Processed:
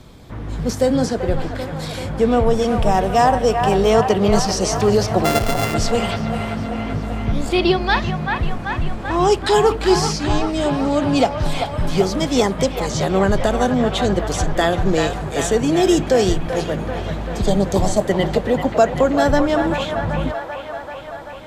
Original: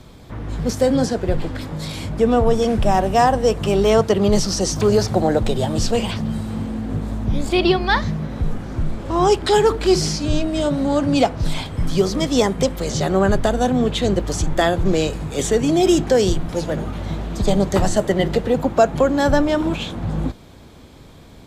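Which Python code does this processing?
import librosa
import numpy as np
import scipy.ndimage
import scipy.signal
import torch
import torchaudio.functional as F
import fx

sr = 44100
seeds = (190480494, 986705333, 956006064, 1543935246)

y = fx.sample_sort(x, sr, block=64, at=(5.24, 5.73), fade=0.02)
y = fx.spec_repair(y, sr, seeds[0], start_s=17.47, length_s=0.54, low_hz=1200.0, high_hz=3100.0, source='both')
y = fx.echo_wet_bandpass(y, sr, ms=387, feedback_pct=72, hz=1300.0, wet_db=-4.0)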